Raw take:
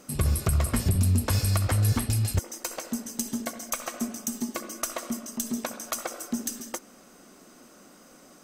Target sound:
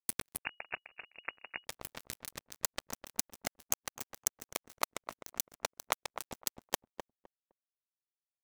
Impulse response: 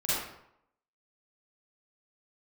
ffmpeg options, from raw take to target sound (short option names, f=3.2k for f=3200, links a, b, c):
-filter_complex "[0:a]highpass=120,lowshelf=f=320:g=-7.5,acompressor=threshold=-39dB:ratio=16,acrusher=bits=4:mix=0:aa=0.5,asplit=2[a][b];[b]adelay=256,lowpass=f=1.1k:p=1,volume=-6dB,asplit=2[c][d];[d]adelay=256,lowpass=f=1.1k:p=1,volume=0.2,asplit=2[e][f];[f]adelay=256,lowpass=f=1.1k:p=1,volume=0.2[g];[a][c][e][g]amix=inputs=4:normalize=0,asettb=1/sr,asplit=3[h][i][j];[h]atrim=end=0.394[k];[i]atrim=start=0.39:end=1.65,asetpts=PTS-STARTPTS,afade=t=in:d=0.004:c=qsin,afade=t=out:st=1.256:d=0.004:c=qsin,lowpass=f=2.5k:t=q:w=0.5098,lowpass=f=2.5k:t=q:w=0.6013,lowpass=f=2.5k:t=q:w=0.9,lowpass=f=2.5k:t=q:w=2.563,afreqshift=-2900[l];[j]atrim=start=1.646[m];[k][l]acrossfade=d=0.004:c1=hsin:c2=qsin[n];[n][m]acrossfade=d=0.004:c1=qsin:c2=hsin,volume=11.5dB"